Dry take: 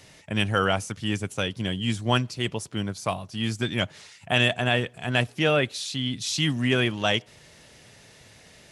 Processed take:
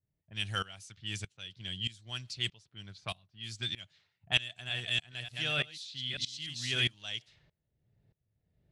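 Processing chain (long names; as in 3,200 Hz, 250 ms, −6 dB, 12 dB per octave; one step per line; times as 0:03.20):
0:04.40–0:06.94: delay that plays each chunk backwards 295 ms, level −5.5 dB
low-pass that shuts in the quiet parts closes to 360 Hz, open at −22 dBFS
octave-band graphic EQ 250/500/1,000/4,000/8,000 Hz −10/−9/−7/+10/+4 dB
tremolo with a ramp in dB swelling 1.6 Hz, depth 21 dB
level −5.5 dB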